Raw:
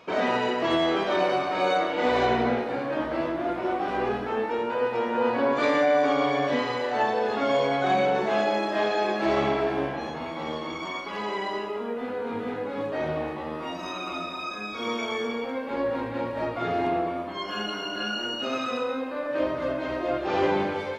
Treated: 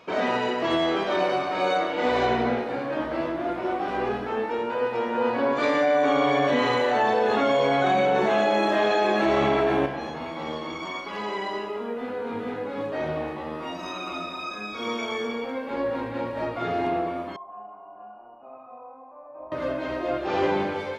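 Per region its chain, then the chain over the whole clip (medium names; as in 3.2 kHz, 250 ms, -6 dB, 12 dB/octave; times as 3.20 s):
5.95–9.86 s: band-stop 4.9 kHz, Q 5.5 + level flattener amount 70%
17.36–19.52 s: cascade formant filter a + bass shelf 150 Hz +12 dB
whole clip: none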